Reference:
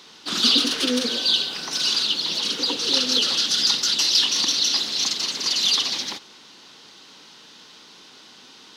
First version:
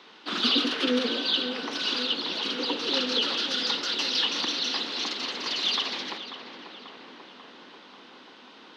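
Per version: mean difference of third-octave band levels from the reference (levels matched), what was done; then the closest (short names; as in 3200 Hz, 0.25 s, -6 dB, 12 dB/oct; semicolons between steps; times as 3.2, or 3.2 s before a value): 7.0 dB: three-band isolator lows -20 dB, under 190 Hz, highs -22 dB, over 3500 Hz; on a send: darkening echo 0.54 s, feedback 74%, low-pass 2300 Hz, level -9 dB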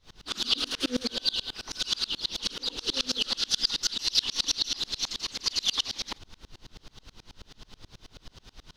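5.0 dB: added noise brown -41 dBFS; dB-ramp tremolo swelling 9.3 Hz, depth 31 dB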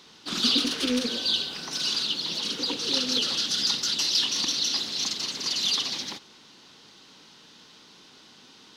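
1.5 dB: rattling part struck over -33 dBFS, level -20 dBFS; low shelf 200 Hz +9 dB; gain -5.5 dB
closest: third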